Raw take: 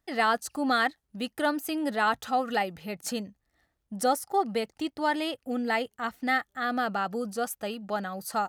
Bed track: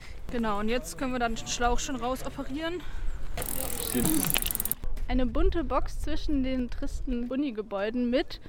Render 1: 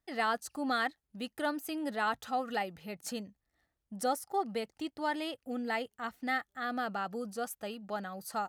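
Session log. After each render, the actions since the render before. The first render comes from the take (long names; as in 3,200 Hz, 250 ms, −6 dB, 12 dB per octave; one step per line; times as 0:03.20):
level −6.5 dB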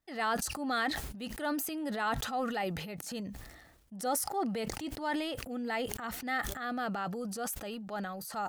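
transient designer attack −4 dB, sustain +8 dB
level that may fall only so fast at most 46 dB per second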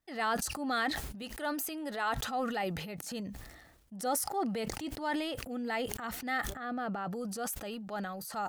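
0:01.22–0:02.17: parametric band 160 Hz −13 dB 0.96 octaves
0:06.50–0:07.13: high-shelf EQ 2,500 Hz −11.5 dB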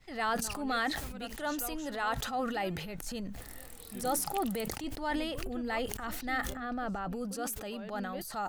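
mix in bed track −17 dB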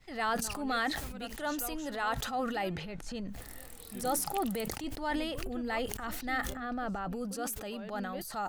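0:02.69–0:03.28: high-frequency loss of the air 68 metres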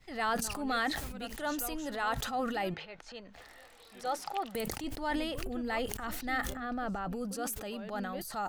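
0:02.74–0:04.55: three-way crossover with the lows and the highs turned down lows −16 dB, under 450 Hz, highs −19 dB, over 5,600 Hz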